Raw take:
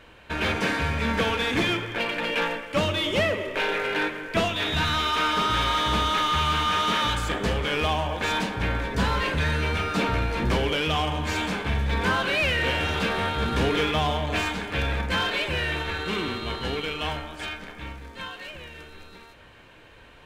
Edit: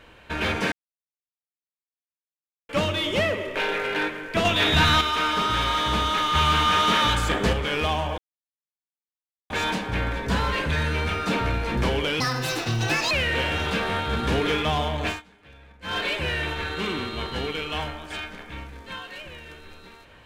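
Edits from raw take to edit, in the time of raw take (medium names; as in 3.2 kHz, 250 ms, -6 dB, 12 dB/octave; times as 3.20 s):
0.72–2.69 s: mute
4.45–5.01 s: gain +6 dB
6.35–7.53 s: gain +3.5 dB
8.18 s: insert silence 1.32 s
10.88–12.40 s: speed 167%
14.35–15.27 s: dip -23.5 dB, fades 0.16 s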